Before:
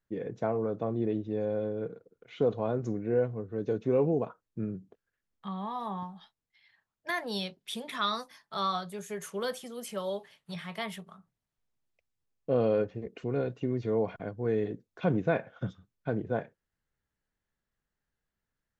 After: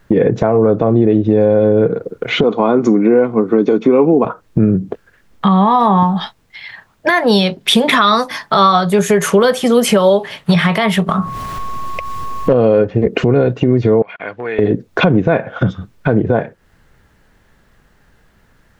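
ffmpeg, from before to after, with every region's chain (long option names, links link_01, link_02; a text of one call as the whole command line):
ffmpeg -i in.wav -filter_complex "[0:a]asettb=1/sr,asplit=3[link_01][link_02][link_03];[link_01]atrim=end=2.434[link_04];[link_02]atrim=start=2.43:end=4.25,asetpts=PTS-STARTPTS,afade=type=in:duration=0.004:curve=qsin,afade=type=out:start_time=1.816:duration=0.004:curve=qsin,highpass=frequency=220:width=0.5412,highpass=frequency=220:width=1.3066,aecho=1:1:0.9:0.47,atrim=end_sample=80262[link_05];[link_03]atrim=start=4.246[link_06];[link_04][link_05]acrossfade=duration=0.004:curve1=hsin:curve2=qsin[link_07];[link_07][link_06]acrossfade=duration=0.004:curve1=qsin:curve2=hsin,asettb=1/sr,asplit=3[link_08][link_09][link_10];[link_08]atrim=end=11.094[link_11];[link_09]atrim=start=11.09:end=12.53,asetpts=PTS-STARTPTS,afade=type=in:duration=0.004:curve=qsin,afade=type=out:start_time=1.436:duration=0.004:curve=qsin,acompressor=mode=upward:threshold=-40dB:ratio=2.5:attack=3.2:release=140:knee=2.83:detection=peak,aeval=exprs='val(0)+0.00126*sin(2*PI*1100*n/s)':channel_layout=same,aeval=exprs='clip(val(0),-1,0.0668)':channel_layout=same[link_12];[link_10]atrim=start=12.526[link_13];[link_11][link_12]acrossfade=duration=0.004:curve1=hsin:curve2=qsin[link_14];[link_14][link_13]acrossfade=duration=0.004:curve1=qsin:curve2=hsin,asettb=1/sr,asplit=3[link_15][link_16][link_17];[link_15]atrim=end=14.024[link_18];[link_16]atrim=start=14.02:end=14.59,asetpts=PTS-STARTPTS,afade=type=in:duration=0.004:curve=qsin,afade=type=out:start_time=0.566:duration=0.004:curve=qsin,acompressor=threshold=-32dB:ratio=6:attack=3.2:release=140:knee=1:detection=peak,bandpass=frequency=2400:width_type=q:width=1.9[link_19];[link_17]atrim=start=14.586[link_20];[link_18][link_19]acrossfade=duration=0.004:curve1=hsin:curve2=qsin[link_21];[link_21][link_20]acrossfade=duration=0.004:curve1=qsin:curve2=hsin,highshelf=frequency=4100:gain=-10.5,acompressor=threshold=-42dB:ratio=10,alimiter=level_in=36dB:limit=-1dB:release=50:level=0:latency=1,volume=-1dB" out.wav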